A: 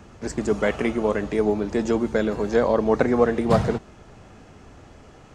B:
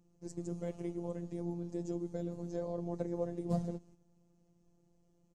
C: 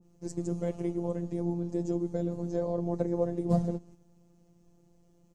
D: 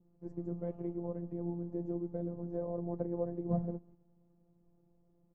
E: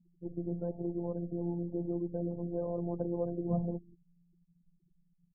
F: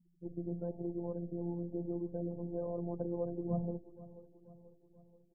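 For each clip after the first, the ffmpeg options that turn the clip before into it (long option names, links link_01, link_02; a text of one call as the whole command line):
ffmpeg -i in.wav -af "agate=range=-8dB:threshold=-43dB:ratio=16:detection=peak,firequalizer=gain_entry='entry(170,0);entry(1400,-22);entry(6300,-4)':delay=0.05:min_phase=1,afftfilt=real='hypot(re,im)*cos(PI*b)':imag='0':win_size=1024:overlap=0.75,volume=-8.5dB" out.wav
ffmpeg -i in.wav -af "adynamicequalizer=threshold=0.00141:dfrequency=1500:dqfactor=0.7:tfrequency=1500:tqfactor=0.7:attack=5:release=100:ratio=0.375:range=2:mode=cutabove:tftype=highshelf,volume=7.5dB" out.wav
ffmpeg -i in.wav -af "lowpass=1200,volume=-6.5dB" out.wav
ffmpeg -i in.wav -filter_complex "[0:a]afftfilt=real='re*gte(hypot(re,im),0.00282)':imag='im*gte(hypot(re,im),0.00282)':win_size=1024:overlap=0.75,asplit=2[link_01][link_02];[link_02]alimiter=level_in=7.5dB:limit=-24dB:level=0:latency=1:release=11,volume=-7.5dB,volume=-2dB[link_03];[link_01][link_03]amix=inputs=2:normalize=0,volume=-1.5dB" out.wav
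ffmpeg -i in.wav -af "aecho=1:1:484|968|1452|1936|2420:0.141|0.0749|0.0397|0.021|0.0111,volume=-3dB" out.wav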